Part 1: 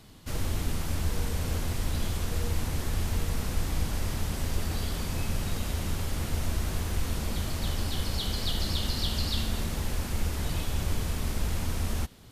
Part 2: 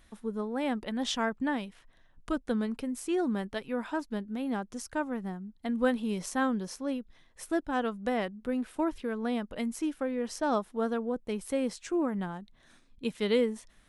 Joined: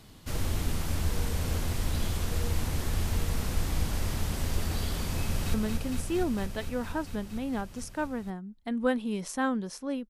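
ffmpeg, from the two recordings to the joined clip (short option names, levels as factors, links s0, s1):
-filter_complex "[0:a]apad=whole_dur=10.09,atrim=end=10.09,atrim=end=5.542[s0];[1:a]atrim=start=2.518:end=7.07[s1];[s0][s1]acrossfade=d=0.004:c1=hsin:c2=hsin,asplit=2[s2][s3];[s3]afade=t=in:st=5.22:d=0.01,afade=t=out:st=5.54:d=0.01,aecho=0:1:230|460|690|920|1150|1380|1610|1840|2070|2300|2530|2760:0.595662|0.506313|0.430366|0.365811|0.310939|0.264298|0.224654|0.190956|0.162312|0.137965|0.117271|0.09968[s4];[s2][s4]amix=inputs=2:normalize=0"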